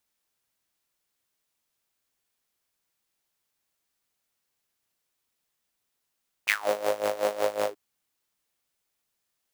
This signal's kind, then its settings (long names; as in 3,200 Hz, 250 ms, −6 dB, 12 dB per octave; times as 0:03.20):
subtractive patch with tremolo G#2, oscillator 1 saw, detune 30 cents, noise −19 dB, filter highpass, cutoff 330 Hz, Q 7.4, filter envelope 3 octaves, filter decay 0.21 s, filter sustain 25%, attack 17 ms, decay 0.06 s, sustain −8.5 dB, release 0.07 s, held 1.21 s, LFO 5.4 Hz, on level 16 dB